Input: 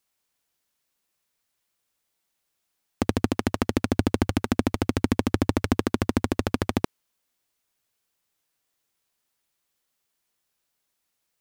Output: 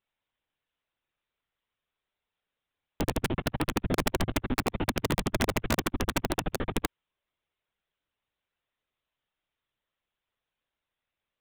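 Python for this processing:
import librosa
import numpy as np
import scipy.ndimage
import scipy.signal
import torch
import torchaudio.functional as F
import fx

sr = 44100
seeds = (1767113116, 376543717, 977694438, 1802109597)

y = fx.lpc_monotone(x, sr, seeds[0], pitch_hz=130.0, order=16)
y = (np.mod(10.0 ** (14.5 / 20.0) * y + 1.0, 2.0) - 1.0) / 10.0 ** (14.5 / 20.0)
y = y * 10.0 ** (-3.5 / 20.0)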